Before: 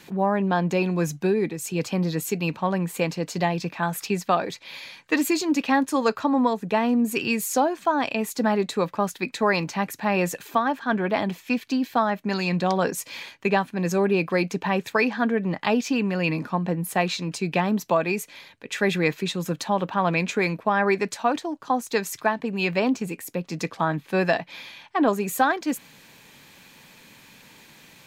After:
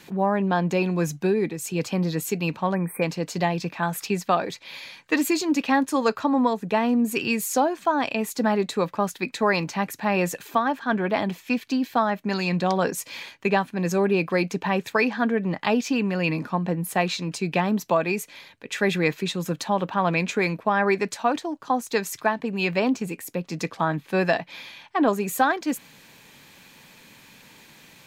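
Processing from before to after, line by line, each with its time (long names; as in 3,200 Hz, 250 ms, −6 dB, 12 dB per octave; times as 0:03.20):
0:02.74–0:03.02: time-frequency box erased 2,500–8,200 Hz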